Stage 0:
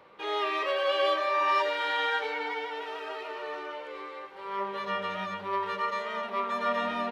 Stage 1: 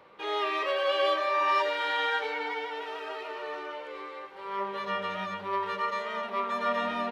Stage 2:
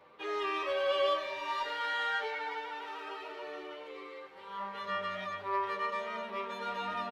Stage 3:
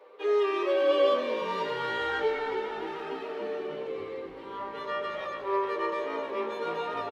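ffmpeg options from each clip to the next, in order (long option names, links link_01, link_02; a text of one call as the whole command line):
ffmpeg -i in.wav -af anull out.wav
ffmpeg -i in.wav -filter_complex "[0:a]asplit=2[link_01][link_02];[link_02]asoftclip=type=tanh:threshold=-27dB,volume=-7dB[link_03];[link_01][link_03]amix=inputs=2:normalize=0,asplit=2[link_04][link_05];[link_05]adelay=9.7,afreqshift=-0.37[link_06];[link_04][link_06]amix=inputs=2:normalize=1,volume=-4dB" out.wav
ffmpeg -i in.wav -filter_complex "[0:a]highpass=frequency=430:width_type=q:width=4.9,asplit=2[link_01][link_02];[link_02]asplit=7[link_03][link_04][link_05][link_06][link_07][link_08][link_09];[link_03]adelay=293,afreqshift=-57,volume=-11dB[link_10];[link_04]adelay=586,afreqshift=-114,volume=-15.2dB[link_11];[link_05]adelay=879,afreqshift=-171,volume=-19.3dB[link_12];[link_06]adelay=1172,afreqshift=-228,volume=-23.5dB[link_13];[link_07]adelay=1465,afreqshift=-285,volume=-27.6dB[link_14];[link_08]adelay=1758,afreqshift=-342,volume=-31.8dB[link_15];[link_09]adelay=2051,afreqshift=-399,volume=-35.9dB[link_16];[link_10][link_11][link_12][link_13][link_14][link_15][link_16]amix=inputs=7:normalize=0[link_17];[link_01][link_17]amix=inputs=2:normalize=0" out.wav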